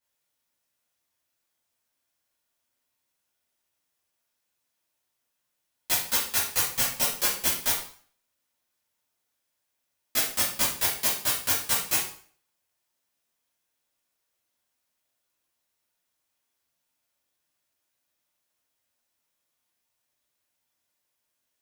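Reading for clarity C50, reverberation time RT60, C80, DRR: 3.5 dB, 0.50 s, 9.0 dB, -10.0 dB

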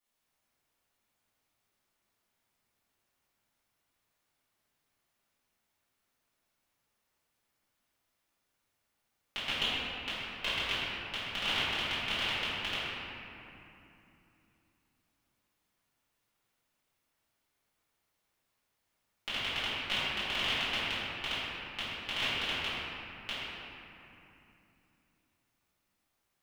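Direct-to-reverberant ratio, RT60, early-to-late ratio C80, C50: -14.5 dB, 2.9 s, -2.5 dB, -4.5 dB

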